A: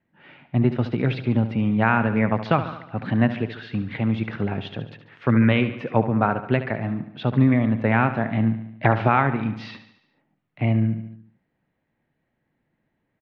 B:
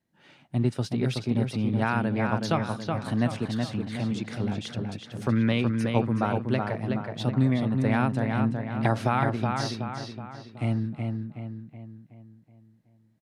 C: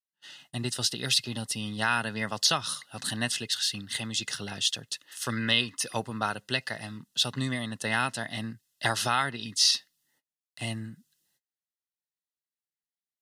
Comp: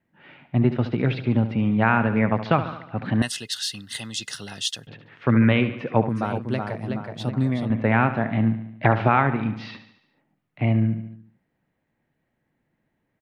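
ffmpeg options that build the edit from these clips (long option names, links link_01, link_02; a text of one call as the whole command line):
ffmpeg -i take0.wav -i take1.wav -i take2.wav -filter_complex "[0:a]asplit=3[link_01][link_02][link_03];[link_01]atrim=end=3.222[link_04];[2:a]atrim=start=3.218:end=4.872[link_05];[link_02]atrim=start=4.868:end=6.092[link_06];[1:a]atrim=start=6.088:end=7.702[link_07];[link_03]atrim=start=7.698[link_08];[link_04][link_05]acrossfade=duration=0.004:curve1=hsin:curve2=hsin[link_09];[link_09][link_06]acrossfade=duration=0.004:curve1=hsin:curve2=hsin[link_10];[link_10][link_07]acrossfade=duration=0.004:curve1=hsin:curve2=hsin[link_11];[link_11][link_08]acrossfade=duration=0.004:curve1=hsin:curve2=hsin" out.wav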